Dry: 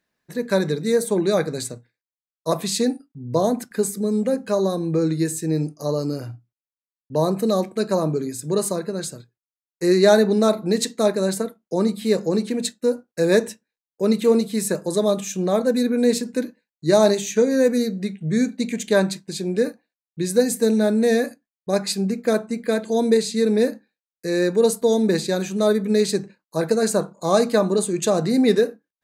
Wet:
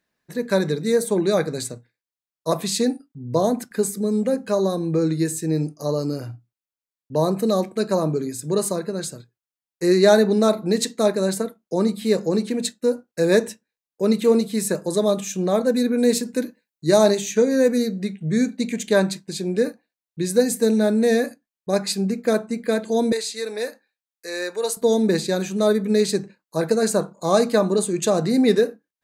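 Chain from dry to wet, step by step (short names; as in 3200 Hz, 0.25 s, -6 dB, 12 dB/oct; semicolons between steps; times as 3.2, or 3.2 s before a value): 15.98–17.03 high shelf 8800 Hz +7 dB; 23.12–24.77 HPF 690 Hz 12 dB/oct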